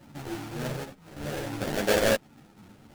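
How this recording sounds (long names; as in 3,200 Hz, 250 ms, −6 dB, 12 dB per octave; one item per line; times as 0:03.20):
sample-and-hold tremolo 4.3 Hz, depth 70%
aliases and images of a low sample rate 1,100 Hz, jitter 20%
a shimmering, thickened sound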